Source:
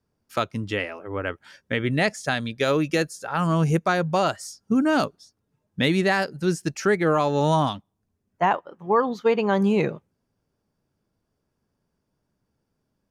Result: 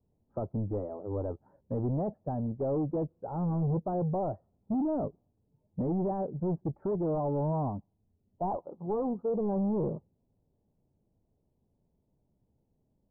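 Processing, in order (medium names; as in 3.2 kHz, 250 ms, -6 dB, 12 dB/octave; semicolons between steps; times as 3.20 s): in parallel at -7 dB: overload inside the chain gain 26 dB; on the sum: bass shelf 130 Hz +6.5 dB; saturation -22 dBFS, distortion -9 dB; steep low-pass 870 Hz 36 dB/octave; trim -4.5 dB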